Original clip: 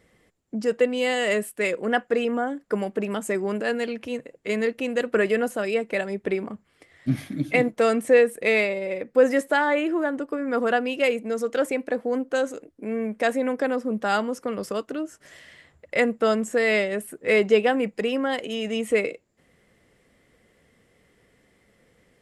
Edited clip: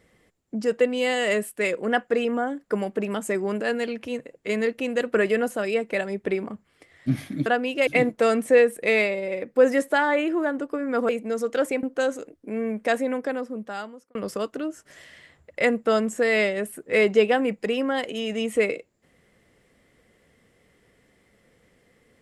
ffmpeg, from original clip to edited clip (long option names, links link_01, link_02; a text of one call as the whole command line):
ffmpeg -i in.wav -filter_complex "[0:a]asplit=6[link_01][link_02][link_03][link_04][link_05][link_06];[link_01]atrim=end=7.462[link_07];[link_02]atrim=start=10.678:end=11.092[link_08];[link_03]atrim=start=7.458:end=10.682[link_09];[link_04]atrim=start=11.088:end=11.832[link_10];[link_05]atrim=start=12.178:end=14.5,asetpts=PTS-STARTPTS,afade=type=out:start_time=1.072:duration=1.25[link_11];[link_06]atrim=start=14.5,asetpts=PTS-STARTPTS,afade=type=in:duration=0.004:curve=hsin[link_12];[link_07][link_08]acrossfade=duration=0.004:curve1=hsin:curve2=hsin[link_13];[link_13][link_09]acrossfade=duration=0.004:curve1=hsin:curve2=hsin[link_14];[link_14][link_10]acrossfade=duration=0.004:curve1=hsin:curve2=hsin[link_15];[link_11][link_12]concat=n=2:v=0:a=1[link_16];[link_15][link_16]acrossfade=duration=0.004:curve1=hsin:curve2=hsin" out.wav